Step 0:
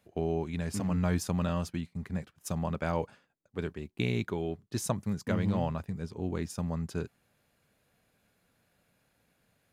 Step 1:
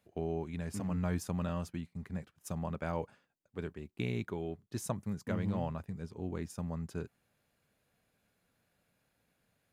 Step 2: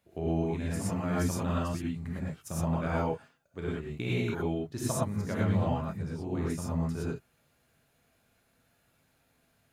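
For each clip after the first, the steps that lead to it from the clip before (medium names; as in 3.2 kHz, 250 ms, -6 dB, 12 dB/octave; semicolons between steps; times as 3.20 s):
dynamic bell 4.4 kHz, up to -4 dB, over -57 dBFS, Q 1; trim -5 dB
gated-style reverb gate 140 ms rising, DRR -6 dB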